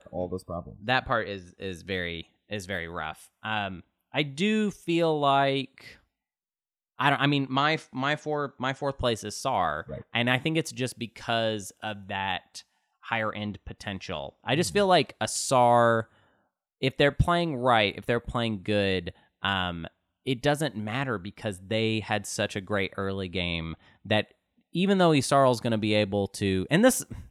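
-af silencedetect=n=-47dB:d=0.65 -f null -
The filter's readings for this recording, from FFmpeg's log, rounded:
silence_start: 5.96
silence_end: 6.99 | silence_duration: 1.02
silence_start: 16.05
silence_end: 16.81 | silence_duration: 0.77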